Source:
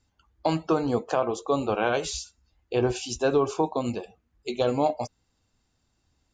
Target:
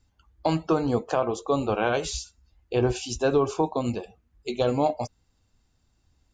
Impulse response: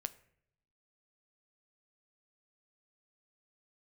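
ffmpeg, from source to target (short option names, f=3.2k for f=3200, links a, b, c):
-af "lowshelf=f=100:g=8.5"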